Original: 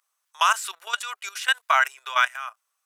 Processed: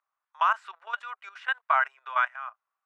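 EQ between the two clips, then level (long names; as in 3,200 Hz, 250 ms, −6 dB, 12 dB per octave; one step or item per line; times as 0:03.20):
high-pass filter 680 Hz 12 dB per octave
low-pass filter 1,300 Hz 12 dB per octave
0.0 dB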